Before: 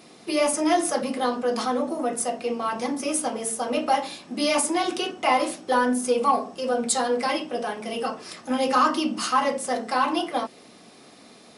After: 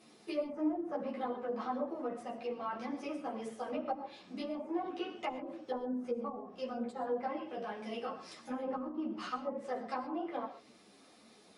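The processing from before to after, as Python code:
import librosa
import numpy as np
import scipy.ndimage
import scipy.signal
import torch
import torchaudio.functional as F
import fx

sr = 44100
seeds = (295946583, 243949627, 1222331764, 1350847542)

y = fx.env_lowpass_down(x, sr, base_hz=330.0, full_db=-17.0)
y = fx.rev_gated(y, sr, seeds[0], gate_ms=150, shape='rising', drr_db=11.5)
y = fx.ensemble(y, sr)
y = y * librosa.db_to_amplitude(-8.5)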